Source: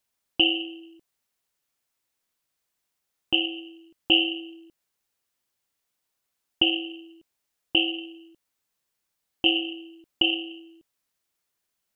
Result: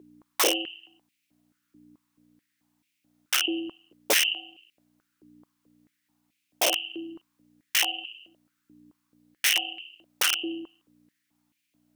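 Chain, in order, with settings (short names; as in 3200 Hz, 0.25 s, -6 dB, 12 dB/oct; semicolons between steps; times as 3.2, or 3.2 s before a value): hum 60 Hz, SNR 14 dB; wrapped overs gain 16.5 dB; stepped high-pass 4.6 Hz 370–2400 Hz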